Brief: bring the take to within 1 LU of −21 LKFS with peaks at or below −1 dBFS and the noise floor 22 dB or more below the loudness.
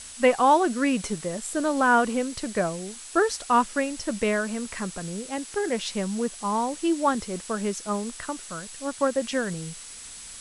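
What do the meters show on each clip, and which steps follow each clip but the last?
interfering tone 7,800 Hz; level of the tone −46 dBFS; background noise floor −42 dBFS; target noise floor −48 dBFS; integrated loudness −26.0 LKFS; sample peak −8.5 dBFS; target loudness −21.0 LKFS
→ notch filter 7,800 Hz, Q 30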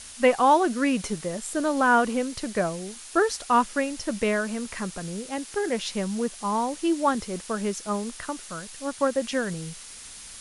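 interfering tone none found; background noise floor −43 dBFS; target noise floor −48 dBFS
→ noise reduction from a noise print 6 dB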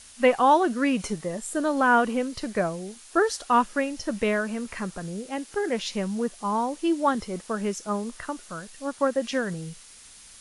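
background noise floor −49 dBFS; integrated loudness −26.0 LKFS; sample peak −8.5 dBFS; target loudness −21.0 LKFS
→ level +5 dB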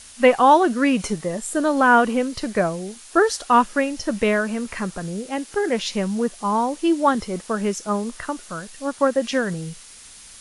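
integrated loudness −21.0 LKFS; sample peak −3.5 dBFS; background noise floor −44 dBFS

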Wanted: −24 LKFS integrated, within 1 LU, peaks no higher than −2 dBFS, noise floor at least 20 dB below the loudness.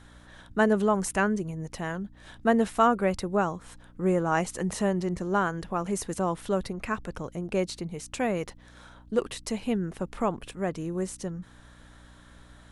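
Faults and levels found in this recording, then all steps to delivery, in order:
mains hum 60 Hz; hum harmonics up to 300 Hz; level of the hum −53 dBFS; integrated loudness −28.5 LKFS; sample peak −9.5 dBFS; target loudness −24.0 LKFS
→ hum removal 60 Hz, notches 5
level +4.5 dB

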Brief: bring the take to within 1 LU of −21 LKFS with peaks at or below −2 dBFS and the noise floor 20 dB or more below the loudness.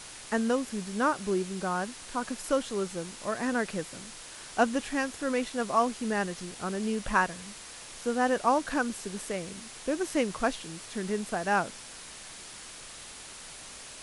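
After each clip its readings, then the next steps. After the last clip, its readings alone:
background noise floor −46 dBFS; target noise floor −51 dBFS; integrated loudness −30.5 LKFS; sample peak −10.0 dBFS; target loudness −21.0 LKFS
→ broadband denoise 6 dB, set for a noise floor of −46 dBFS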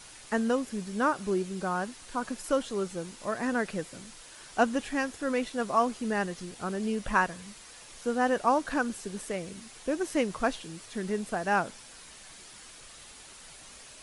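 background noise floor −50 dBFS; target noise floor −51 dBFS
→ broadband denoise 6 dB, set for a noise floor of −50 dBFS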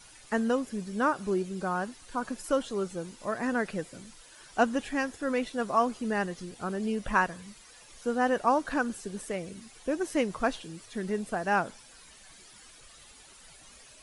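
background noise floor −54 dBFS; integrated loudness −30.5 LKFS; sample peak −10.5 dBFS; target loudness −21.0 LKFS
→ level +9.5 dB
brickwall limiter −2 dBFS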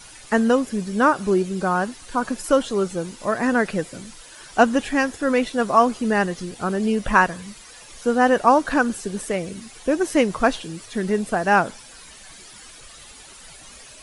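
integrated loudness −21.0 LKFS; sample peak −2.0 dBFS; background noise floor −44 dBFS

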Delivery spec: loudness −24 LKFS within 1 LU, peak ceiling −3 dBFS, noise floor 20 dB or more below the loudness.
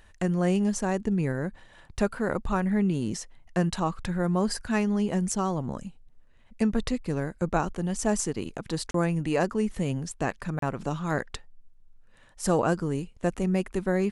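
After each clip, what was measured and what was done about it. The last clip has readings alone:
number of dropouts 2; longest dropout 33 ms; integrated loudness −28.5 LKFS; sample peak −10.5 dBFS; target loudness −24.0 LKFS
→ repair the gap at 0:08.91/0:10.59, 33 ms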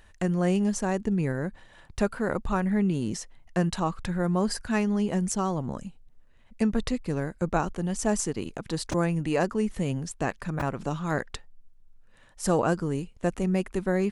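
number of dropouts 0; integrated loudness −28.5 LKFS; sample peak −10.5 dBFS; target loudness −24.0 LKFS
→ level +4.5 dB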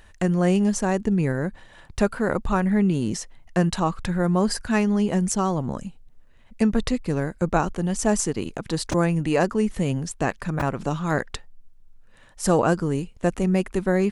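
integrated loudness −24.0 LKFS; sample peak −6.0 dBFS; background noise floor −51 dBFS

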